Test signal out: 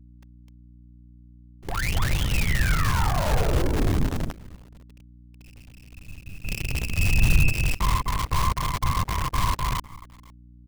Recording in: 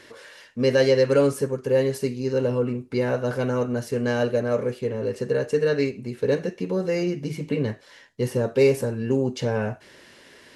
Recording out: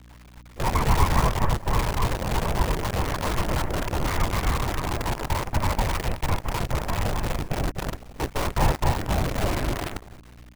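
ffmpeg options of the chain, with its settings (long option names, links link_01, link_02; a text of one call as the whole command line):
ffmpeg -i in.wav -filter_complex "[0:a]aresample=8000,aeval=exprs='abs(val(0))':channel_layout=same,aresample=44100,lowpass=frequency=2400:width=0.5412,lowpass=frequency=2400:width=1.3066,bandreject=frequency=60:width_type=h:width=6,bandreject=frequency=120:width_type=h:width=6,asplit=2[link_01][link_02];[link_02]aecho=0:1:253|506|759|1012:0.668|0.174|0.0452|0.0117[link_03];[link_01][link_03]amix=inputs=2:normalize=0,afftfilt=real='hypot(re,im)*cos(2*PI*random(0))':imag='hypot(re,im)*sin(2*PI*random(1))':win_size=512:overlap=0.75,acrusher=bits=6:dc=4:mix=0:aa=0.000001,aeval=exprs='val(0)+0.00282*(sin(2*PI*60*n/s)+sin(2*PI*2*60*n/s)/2+sin(2*PI*3*60*n/s)/3+sin(2*PI*4*60*n/s)/4+sin(2*PI*5*60*n/s)/5)':channel_layout=same,volume=3.5dB" out.wav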